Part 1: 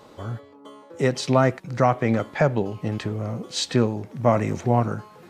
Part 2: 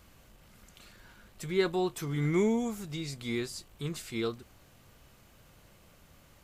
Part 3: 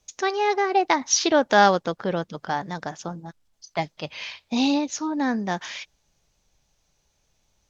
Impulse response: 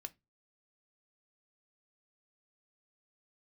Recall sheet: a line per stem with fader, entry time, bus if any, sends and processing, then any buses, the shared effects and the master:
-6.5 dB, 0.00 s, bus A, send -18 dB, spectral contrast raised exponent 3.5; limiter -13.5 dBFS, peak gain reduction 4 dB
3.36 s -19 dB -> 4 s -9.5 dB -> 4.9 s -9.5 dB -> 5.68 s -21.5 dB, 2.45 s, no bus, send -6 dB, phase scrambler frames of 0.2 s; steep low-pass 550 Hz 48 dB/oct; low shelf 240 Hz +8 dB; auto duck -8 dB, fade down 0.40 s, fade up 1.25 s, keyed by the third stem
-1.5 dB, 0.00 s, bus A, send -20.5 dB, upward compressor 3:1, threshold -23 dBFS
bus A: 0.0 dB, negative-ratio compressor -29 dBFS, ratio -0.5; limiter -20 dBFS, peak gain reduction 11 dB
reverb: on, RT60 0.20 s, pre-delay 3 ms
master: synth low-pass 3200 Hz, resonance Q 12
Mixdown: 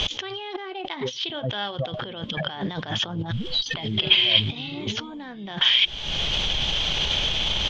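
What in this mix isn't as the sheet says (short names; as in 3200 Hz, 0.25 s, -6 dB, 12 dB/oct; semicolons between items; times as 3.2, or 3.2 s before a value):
stem 2: missing steep low-pass 550 Hz 48 dB/oct; stem 3 -1.5 dB -> +8.5 dB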